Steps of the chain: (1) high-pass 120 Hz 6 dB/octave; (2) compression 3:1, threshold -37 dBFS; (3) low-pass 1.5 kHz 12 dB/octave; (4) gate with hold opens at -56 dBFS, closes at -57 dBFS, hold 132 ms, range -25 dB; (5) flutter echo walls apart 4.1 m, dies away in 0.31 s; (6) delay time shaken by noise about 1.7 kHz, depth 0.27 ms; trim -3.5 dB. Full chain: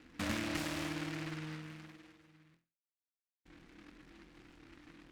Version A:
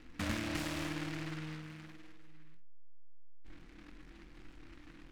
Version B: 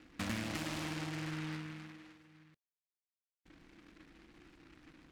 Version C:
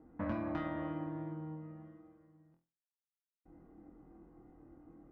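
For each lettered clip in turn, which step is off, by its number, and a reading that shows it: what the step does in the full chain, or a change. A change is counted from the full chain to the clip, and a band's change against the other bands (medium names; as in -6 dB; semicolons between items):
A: 1, 125 Hz band +2.5 dB; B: 5, 125 Hz band +2.5 dB; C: 6, 2 kHz band -10.0 dB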